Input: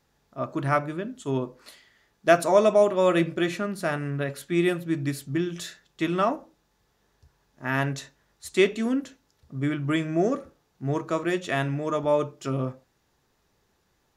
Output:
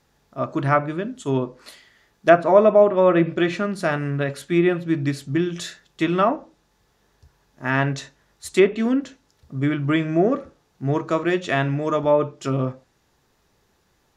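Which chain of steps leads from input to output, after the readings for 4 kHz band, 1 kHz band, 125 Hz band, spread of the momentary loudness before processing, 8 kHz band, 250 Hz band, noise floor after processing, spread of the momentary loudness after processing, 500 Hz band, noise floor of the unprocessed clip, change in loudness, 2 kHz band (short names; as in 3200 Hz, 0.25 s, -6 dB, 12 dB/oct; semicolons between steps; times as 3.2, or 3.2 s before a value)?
+2.0 dB, +5.0 dB, +5.0 dB, 14 LU, 0.0 dB, +5.0 dB, -65 dBFS, 14 LU, +5.0 dB, -70 dBFS, +5.0 dB, +4.0 dB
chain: treble ducked by the level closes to 1800 Hz, closed at -17 dBFS; gain +5 dB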